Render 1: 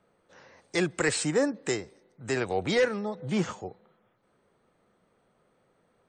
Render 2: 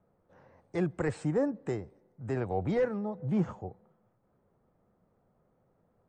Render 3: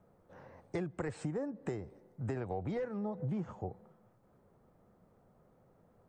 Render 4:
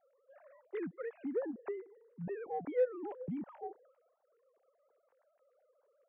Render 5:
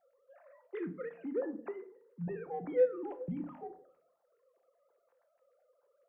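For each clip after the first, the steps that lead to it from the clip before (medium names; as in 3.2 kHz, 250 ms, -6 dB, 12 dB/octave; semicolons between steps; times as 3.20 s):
FFT filter 100 Hz 0 dB, 390 Hz -9 dB, 770 Hz -7 dB, 4 kHz -26 dB; trim +4.5 dB
compression 16:1, threshold -38 dBFS, peak gain reduction 15.5 dB; trim +4.5 dB
formants replaced by sine waves; in parallel at -6 dB: saturation -33.5 dBFS, distortion -6 dB; on the sum: distance through air 310 m; trim -2 dB
simulated room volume 410 m³, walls furnished, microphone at 0.83 m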